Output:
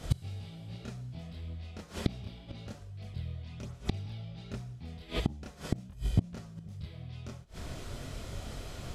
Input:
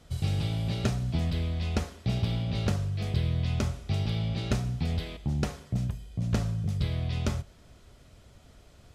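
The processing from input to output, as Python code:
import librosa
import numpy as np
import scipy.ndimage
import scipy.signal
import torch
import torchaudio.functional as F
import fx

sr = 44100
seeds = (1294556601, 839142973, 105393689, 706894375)

y = fx.chorus_voices(x, sr, voices=2, hz=0.66, base_ms=27, depth_ms=4.5, mix_pct=55)
y = fx.gate_flip(y, sr, shuts_db=-30.0, range_db=-28)
y = y * 10.0 ** (16.5 / 20.0)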